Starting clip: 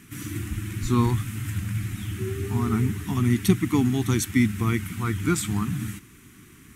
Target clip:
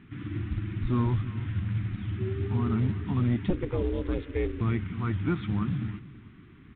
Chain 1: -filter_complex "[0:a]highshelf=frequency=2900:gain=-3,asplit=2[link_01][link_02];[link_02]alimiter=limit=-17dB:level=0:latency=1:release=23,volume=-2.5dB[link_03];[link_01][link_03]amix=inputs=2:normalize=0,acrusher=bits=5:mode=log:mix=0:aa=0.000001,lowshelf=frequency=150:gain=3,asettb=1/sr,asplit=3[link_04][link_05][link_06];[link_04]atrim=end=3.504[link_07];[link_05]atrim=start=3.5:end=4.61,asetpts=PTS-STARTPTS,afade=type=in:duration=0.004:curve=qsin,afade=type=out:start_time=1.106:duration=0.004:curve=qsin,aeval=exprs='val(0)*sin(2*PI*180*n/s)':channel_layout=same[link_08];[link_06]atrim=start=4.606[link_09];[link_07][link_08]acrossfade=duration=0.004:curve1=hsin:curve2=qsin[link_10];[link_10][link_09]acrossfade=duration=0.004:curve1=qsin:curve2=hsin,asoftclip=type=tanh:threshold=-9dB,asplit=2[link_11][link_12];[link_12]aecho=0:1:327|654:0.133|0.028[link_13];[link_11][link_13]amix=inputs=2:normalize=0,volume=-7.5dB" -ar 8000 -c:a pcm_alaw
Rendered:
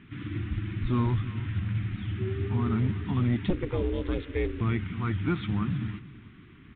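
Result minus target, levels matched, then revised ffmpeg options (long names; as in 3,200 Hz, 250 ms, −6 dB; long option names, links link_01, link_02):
4,000 Hz band +4.0 dB
-filter_complex "[0:a]highshelf=frequency=2900:gain=-12.5,asplit=2[link_01][link_02];[link_02]alimiter=limit=-17dB:level=0:latency=1:release=23,volume=-2.5dB[link_03];[link_01][link_03]amix=inputs=2:normalize=0,acrusher=bits=5:mode=log:mix=0:aa=0.000001,lowshelf=frequency=150:gain=3,asettb=1/sr,asplit=3[link_04][link_05][link_06];[link_04]atrim=end=3.504[link_07];[link_05]atrim=start=3.5:end=4.61,asetpts=PTS-STARTPTS,afade=type=in:duration=0.004:curve=qsin,afade=type=out:start_time=1.106:duration=0.004:curve=qsin,aeval=exprs='val(0)*sin(2*PI*180*n/s)':channel_layout=same[link_08];[link_06]atrim=start=4.606[link_09];[link_07][link_08]acrossfade=duration=0.004:curve1=hsin:curve2=qsin[link_10];[link_10][link_09]acrossfade=duration=0.004:curve1=qsin:curve2=hsin,asoftclip=type=tanh:threshold=-9dB,asplit=2[link_11][link_12];[link_12]aecho=0:1:327|654:0.133|0.028[link_13];[link_11][link_13]amix=inputs=2:normalize=0,volume=-7.5dB" -ar 8000 -c:a pcm_alaw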